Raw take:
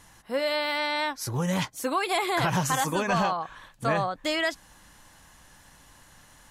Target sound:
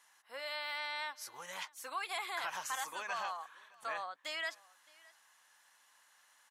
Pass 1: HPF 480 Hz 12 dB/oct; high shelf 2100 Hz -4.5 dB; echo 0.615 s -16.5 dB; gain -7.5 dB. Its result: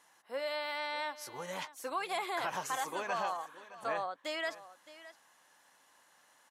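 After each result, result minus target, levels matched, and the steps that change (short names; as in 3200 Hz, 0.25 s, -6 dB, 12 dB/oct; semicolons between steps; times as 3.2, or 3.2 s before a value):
500 Hz band +6.5 dB; echo-to-direct +7.5 dB
change: HPF 1100 Hz 12 dB/oct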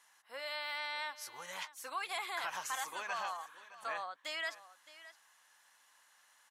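echo-to-direct +7.5 dB
change: echo 0.615 s -24 dB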